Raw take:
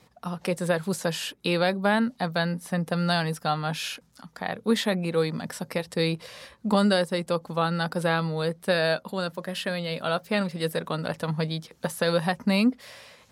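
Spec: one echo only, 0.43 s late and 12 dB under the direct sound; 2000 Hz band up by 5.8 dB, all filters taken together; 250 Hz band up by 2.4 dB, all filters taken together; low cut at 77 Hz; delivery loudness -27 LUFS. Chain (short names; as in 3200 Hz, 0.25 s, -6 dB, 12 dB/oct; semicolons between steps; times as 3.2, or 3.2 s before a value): HPF 77 Hz; bell 250 Hz +3.5 dB; bell 2000 Hz +7.5 dB; echo 0.43 s -12 dB; gain -2.5 dB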